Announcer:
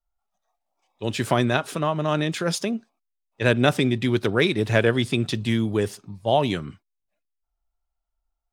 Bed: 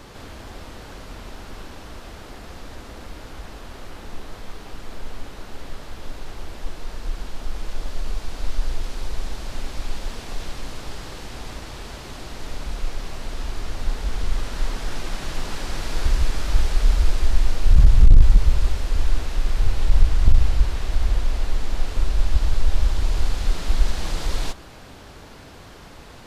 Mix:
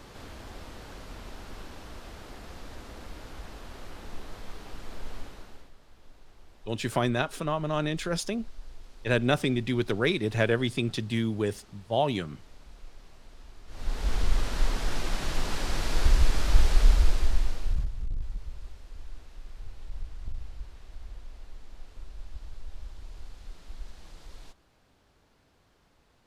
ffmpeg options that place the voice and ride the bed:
ffmpeg -i stem1.wav -i stem2.wav -filter_complex "[0:a]adelay=5650,volume=-5.5dB[link_01];[1:a]volume=13.5dB,afade=type=out:start_time=5.17:duration=0.54:silence=0.177828,afade=type=in:start_time=13.67:duration=0.45:silence=0.112202,afade=type=out:start_time=16.8:duration=1.1:silence=0.0891251[link_02];[link_01][link_02]amix=inputs=2:normalize=0" out.wav

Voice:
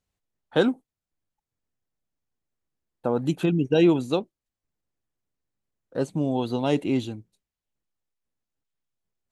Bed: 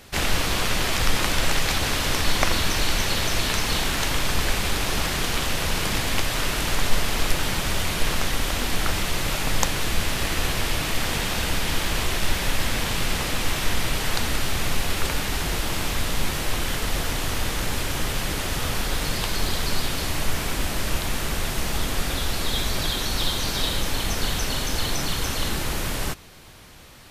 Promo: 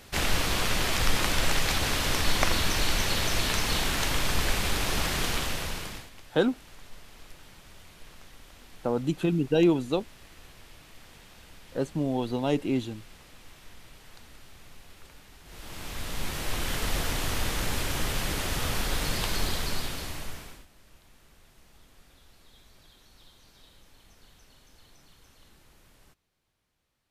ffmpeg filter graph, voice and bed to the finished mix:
ffmpeg -i stem1.wav -i stem2.wav -filter_complex "[0:a]adelay=5800,volume=-3dB[link_01];[1:a]volume=19.5dB,afade=type=out:start_time=5.27:duration=0.83:silence=0.0707946,afade=type=in:start_time=15.44:duration=1.42:silence=0.0707946,afade=type=out:start_time=19.35:duration=1.31:silence=0.0375837[link_02];[link_01][link_02]amix=inputs=2:normalize=0" out.wav

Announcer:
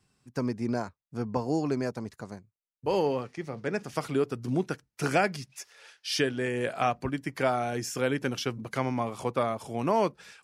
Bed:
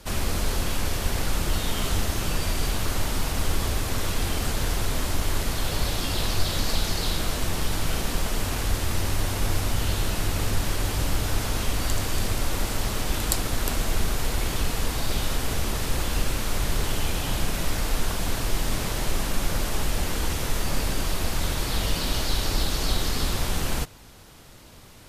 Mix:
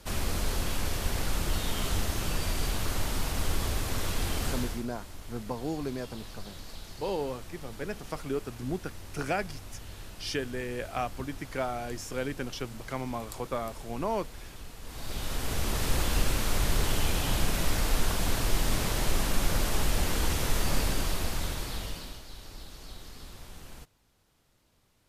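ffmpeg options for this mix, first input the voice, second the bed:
ffmpeg -i stem1.wav -i stem2.wav -filter_complex "[0:a]adelay=4150,volume=-5.5dB[link_01];[1:a]volume=13dB,afade=type=out:start_time=4.5:duration=0.35:silence=0.188365,afade=type=in:start_time=14.82:duration=1.07:silence=0.133352,afade=type=out:start_time=20.75:duration=1.46:silence=0.112202[link_02];[link_01][link_02]amix=inputs=2:normalize=0" out.wav

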